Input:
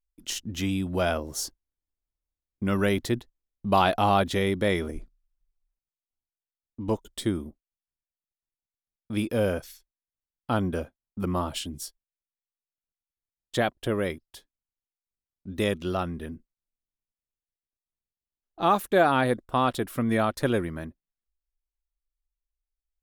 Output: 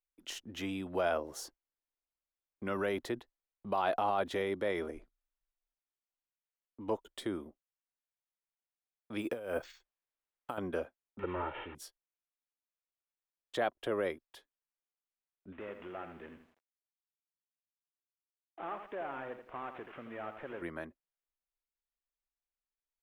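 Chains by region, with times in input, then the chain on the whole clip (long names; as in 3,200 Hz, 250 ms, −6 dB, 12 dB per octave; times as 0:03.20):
0:09.21–0:10.58: bad sample-rate conversion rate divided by 4×, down filtered, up hold + compressor whose output falls as the input rises −30 dBFS, ratio −0.5
0:11.19–0:11.75: linear delta modulator 16 kbit/s, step −39.5 dBFS + comb filter 2.2 ms, depth 68%
0:15.52–0:20.62: variable-slope delta modulation 16 kbit/s + downward compressor 3 to 1, threshold −39 dBFS + feedback echo at a low word length 83 ms, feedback 35%, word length 10 bits, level −8.5 dB
whole clip: dynamic equaliser 2,500 Hz, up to −4 dB, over −38 dBFS, Q 0.71; brickwall limiter −18.5 dBFS; three-way crossover with the lows and the highs turned down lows −16 dB, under 340 Hz, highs −12 dB, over 3,100 Hz; level −1.5 dB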